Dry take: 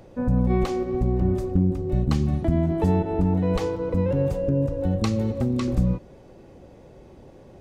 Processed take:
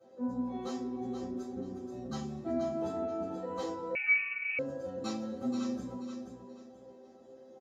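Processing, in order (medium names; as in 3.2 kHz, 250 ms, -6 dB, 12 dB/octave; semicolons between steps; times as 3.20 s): high-pass 260 Hz 12 dB/octave; chord resonator C4 major, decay 0.23 s; feedback delay 480 ms, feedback 28%, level -7.5 dB; reverberation RT60 0.25 s, pre-delay 3 ms, DRR -11.5 dB; 3.95–4.59 s: frequency inversion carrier 2.8 kHz; trim -6 dB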